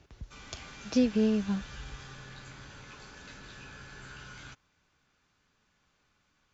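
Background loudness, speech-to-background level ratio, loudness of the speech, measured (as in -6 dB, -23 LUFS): -47.5 LUFS, 19.0 dB, -28.5 LUFS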